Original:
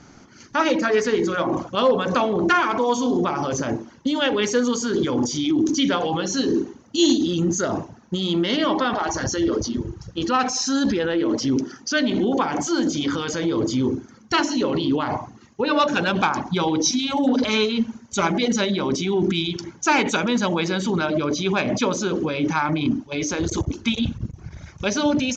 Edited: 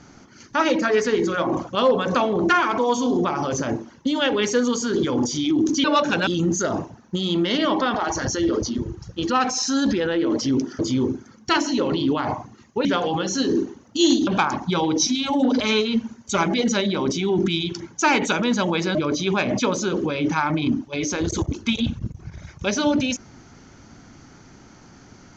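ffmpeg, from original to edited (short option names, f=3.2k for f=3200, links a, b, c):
-filter_complex "[0:a]asplit=7[a][b][c][d][e][f][g];[a]atrim=end=5.842[h];[b]atrim=start=15.678:end=16.112[i];[c]atrim=start=7.258:end=11.782[j];[d]atrim=start=13.618:end=15.682[k];[e]atrim=start=5.838:end=7.262[l];[f]atrim=start=16.108:end=20.792[m];[g]atrim=start=21.138[n];[h][i]acrossfade=d=0.004:c1=hsin:c2=hsin[o];[o][j]acrossfade=d=0.004:c1=hsin:c2=hsin[p];[p][k]acrossfade=d=0.004:c1=hsin:c2=hsin[q];[q][l]acrossfade=d=0.004:c1=hsin:c2=hsin[r];[r][m]acrossfade=d=0.004:c1=hsin:c2=hsin[s];[s][n]acrossfade=d=0.004:c1=hsin:c2=hsin"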